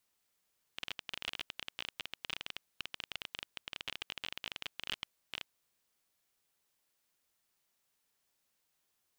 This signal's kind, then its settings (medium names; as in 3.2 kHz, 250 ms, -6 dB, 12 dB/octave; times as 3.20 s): random clicks 22 per s -21.5 dBFS 4.77 s